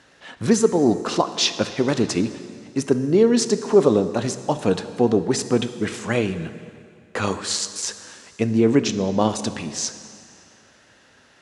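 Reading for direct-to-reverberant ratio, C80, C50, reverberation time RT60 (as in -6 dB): 10.5 dB, 12.5 dB, 11.5 dB, 2.3 s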